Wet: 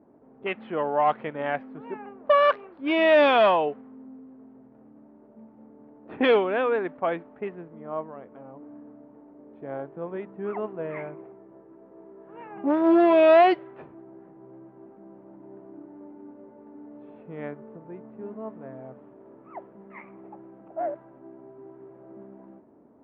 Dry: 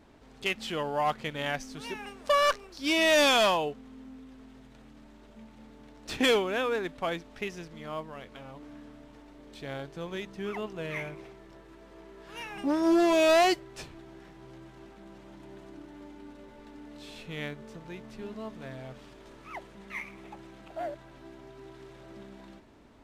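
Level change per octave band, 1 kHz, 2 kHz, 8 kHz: +5.5 dB, +0.5 dB, under -30 dB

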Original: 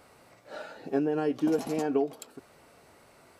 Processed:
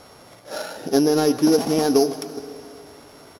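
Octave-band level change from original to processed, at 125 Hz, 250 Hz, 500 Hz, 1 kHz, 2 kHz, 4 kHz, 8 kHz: +10.0, +10.0, +9.5, +9.5, +8.5, +19.5, +18.0 dB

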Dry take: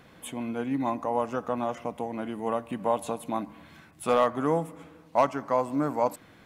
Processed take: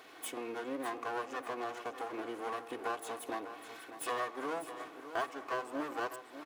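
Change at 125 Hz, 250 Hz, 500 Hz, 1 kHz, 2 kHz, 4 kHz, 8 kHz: -23.0, -13.0, -12.0, -9.5, -0.5, -2.5, -2.5 dB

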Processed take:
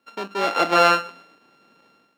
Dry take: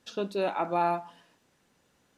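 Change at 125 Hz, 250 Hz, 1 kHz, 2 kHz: +3.5, +6.0, +9.0, +17.5 dB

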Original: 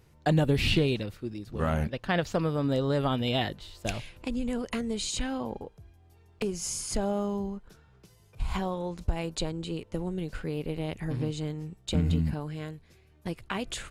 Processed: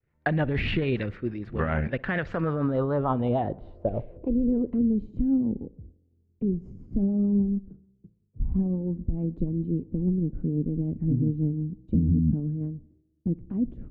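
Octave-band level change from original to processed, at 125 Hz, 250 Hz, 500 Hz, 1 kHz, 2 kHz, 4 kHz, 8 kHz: +3.5 dB, +6.0 dB, +0.5 dB, 0.0 dB, +1.0 dB, under -10 dB, under -35 dB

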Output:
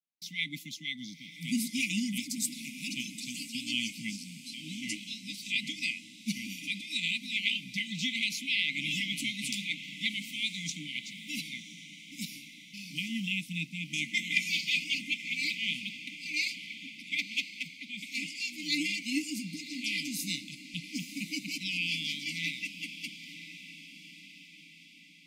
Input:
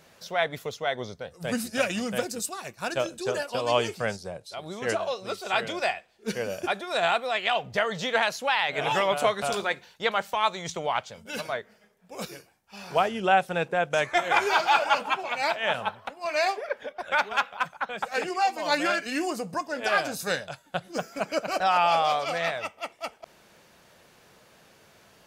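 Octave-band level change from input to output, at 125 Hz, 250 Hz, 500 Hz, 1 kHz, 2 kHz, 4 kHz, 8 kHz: -3.0 dB, -1.0 dB, under -35 dB, under -40 dB, -4.5 dB, +0.5 dB, +0.5 dB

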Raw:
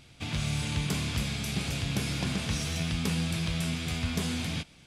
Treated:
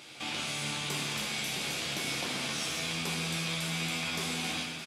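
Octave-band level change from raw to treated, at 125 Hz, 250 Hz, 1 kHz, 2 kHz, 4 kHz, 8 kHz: -10.5, -7.0, +2.5, +2.5, +2.5, +2.0 dB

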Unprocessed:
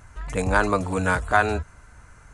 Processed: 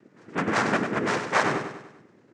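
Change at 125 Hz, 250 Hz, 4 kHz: -7.5, -0.5, +3.5 dB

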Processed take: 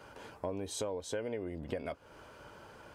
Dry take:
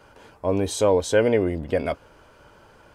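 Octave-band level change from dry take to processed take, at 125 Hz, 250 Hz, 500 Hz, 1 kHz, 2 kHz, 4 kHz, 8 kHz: -16.0, -16.0, -17.5, -15.0, -16.5, -12.0, -11.0 dB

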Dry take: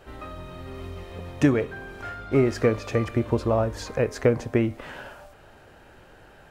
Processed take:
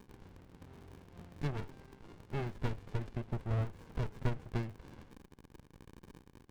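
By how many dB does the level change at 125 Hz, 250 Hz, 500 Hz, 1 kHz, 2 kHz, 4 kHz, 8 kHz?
-9.0 dB, -18.5 dB, -21.5 dB, -14.0 dB, -16.5 dB, -14.0 dB, under -15 dB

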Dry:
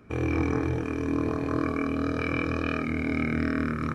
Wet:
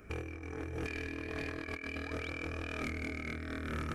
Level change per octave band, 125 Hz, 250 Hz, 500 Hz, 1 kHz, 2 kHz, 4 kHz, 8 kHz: -11.5 dB, -15.5 dB, -11.5 dB, -12.0 dB, -7.0 dB, -3.5 dB, n/a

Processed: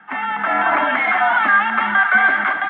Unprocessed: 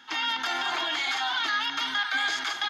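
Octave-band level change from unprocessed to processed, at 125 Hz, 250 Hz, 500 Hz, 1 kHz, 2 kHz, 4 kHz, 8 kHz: n/a, +14.0 dB, +17.0 dB, +14.0 dB, +13.5 dB, -8.0 dB, under -40 dB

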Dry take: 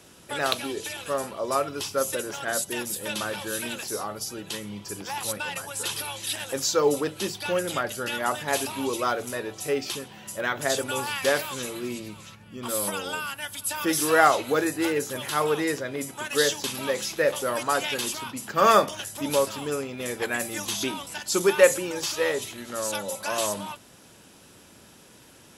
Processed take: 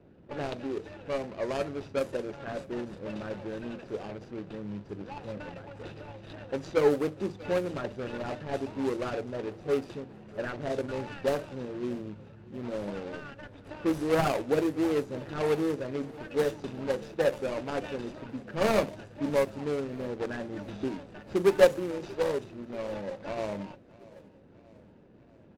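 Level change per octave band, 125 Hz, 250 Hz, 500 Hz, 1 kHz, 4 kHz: +1.0, -0.5, -2.5, -10.5, -14.5 dB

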